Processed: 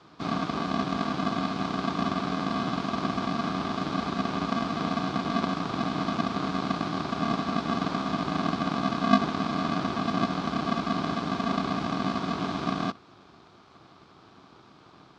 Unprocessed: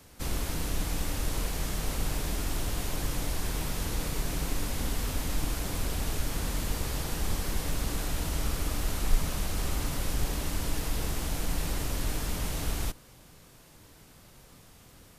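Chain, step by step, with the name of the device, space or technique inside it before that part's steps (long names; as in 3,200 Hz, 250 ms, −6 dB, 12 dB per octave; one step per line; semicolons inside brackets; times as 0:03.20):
ring modulator pedal into a guitar cabinet (ring modulator with a square carrier 230 Hz; loudspeaker in its box 110–4,300 Hz, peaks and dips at 230 Hz −6 dB, 530 Hz −7 dB, 1,200 Hz +7 dB, 1,900 Hz −9 dB, 2,800 Hz −6 dB)
level +3 dB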